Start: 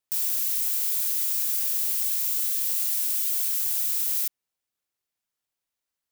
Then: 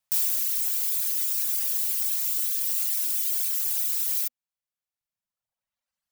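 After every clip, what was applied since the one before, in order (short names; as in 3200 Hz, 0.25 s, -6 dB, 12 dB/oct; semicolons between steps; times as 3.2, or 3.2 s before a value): reverb removal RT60 1.7 s; Chebyshev band-stop 240–510 Hz, order 4; gain +4 dB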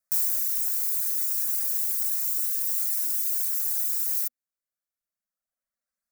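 fixed phaser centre 600 Hz, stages 8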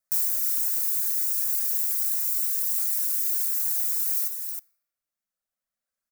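echo 0.314 s -6 dB; on a send at -20 dB: reverb RT60 1.5 s, pre-delay 4 ms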